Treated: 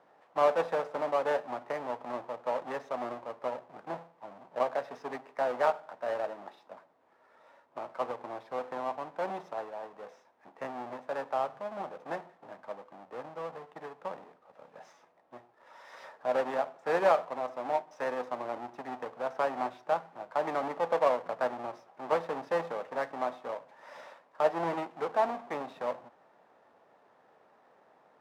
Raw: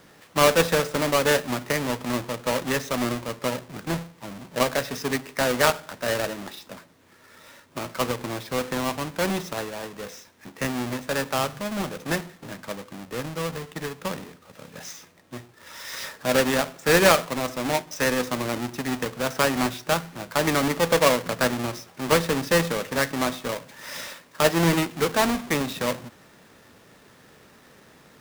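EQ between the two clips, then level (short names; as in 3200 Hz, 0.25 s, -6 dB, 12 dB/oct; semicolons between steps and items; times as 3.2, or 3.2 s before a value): band-pass 760 Hz, Q 2.3; -1.5 dB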